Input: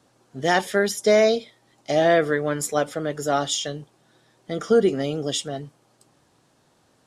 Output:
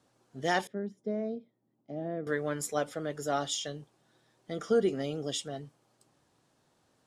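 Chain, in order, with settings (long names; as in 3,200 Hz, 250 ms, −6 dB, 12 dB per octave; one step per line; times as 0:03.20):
0:00.67–0:02.27: resonant band-pass 210 Hz, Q 1.5
level −8.5 dB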